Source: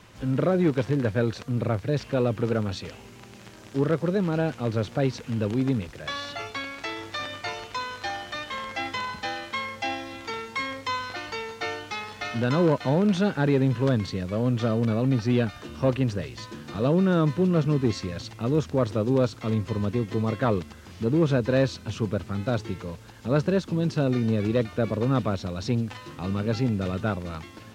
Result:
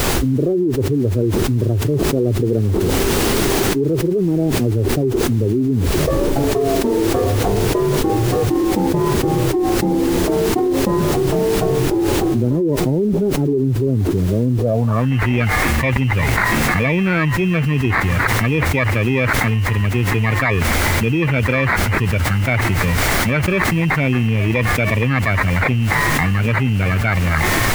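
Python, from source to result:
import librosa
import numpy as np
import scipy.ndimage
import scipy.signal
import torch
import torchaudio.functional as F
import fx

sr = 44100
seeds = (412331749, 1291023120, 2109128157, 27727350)

y = fx.bin_expand(x, sr, power=1.5)
y = scipy.signal.sosfilt(scipy.signal.butter(2, 50.0, 'highpass', fs=sr, output='sos'), y)
y = fx.high_shelf(y, sr, hz=5100.0, db=10.0)
y = y + 0.38 * np.pad(y, (int(1.0 * sr / 1000.0), 0))[:len(y)]
y = fx.dynamic_eq(y, sr, hz=200.0, q=1.9, threshold_db=-38.0, ratio=4.0, max_db=-6)
y = fx.sample_hold(y, sr, seeds[0], rate_hz=2900.0, jitter_pct=0)
y = fx.filter_sweep_lowpass(y, sr, from_hz=380.0, to_hz=2200.0, start_s=14.58, end_s=15.15, q=5.2)
y = fx.dmg_noise_colour(y, sr, seeds[1], colour='pink', level_db=-54.0)
y = fx.env_flatten(y, sr, amount_pct=100)
y = y * 10.0 ** (-3.5 / 20.0)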